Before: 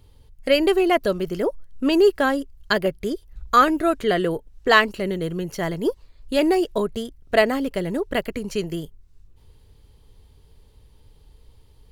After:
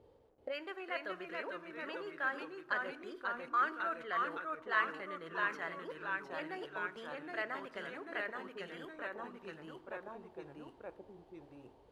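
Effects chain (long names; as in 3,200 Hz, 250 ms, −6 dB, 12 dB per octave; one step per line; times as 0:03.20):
time-frequency box erased 0:08.26–0:08.57, 1,000–12,000 Hz
reversed playback
downward compressor 4 to 1, threshold −36 dBFS, peak gain reduction 21 dB
reversed playback
bit reduction 11 bits
delay with pitch and tempo change per echo 381 ms, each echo −1 semitone, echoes 3
on a send at −14 dB: convolution reverb RT60 1.1 s, pre-delay 3 ms
on the sum: envelope filter 470–1,500 Hz, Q 2.3, up, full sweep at −31 dBFS
level +5.5 dB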